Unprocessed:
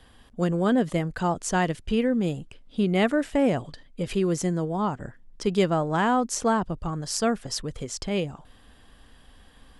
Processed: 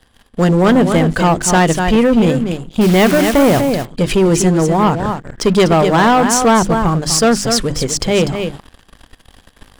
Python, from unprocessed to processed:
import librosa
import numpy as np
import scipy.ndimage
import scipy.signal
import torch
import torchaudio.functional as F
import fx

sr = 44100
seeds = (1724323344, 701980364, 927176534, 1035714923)

y = fx.hum_notches(x, sr, base_hz=50, count=7)
y = fx.quant_dither(y, sr, seeds[0], bits=6, dither='none', at=(2.81, 3.61))
y = y + 10.0 ** (-9.0 / 20.0) * np.pad(y, (int(246 * sr / 1000.0), 0))[:len(y)]
y = fx.leveller(y, sr, passes=3)
y = y * 10.0 ** (4.5 / 20.0)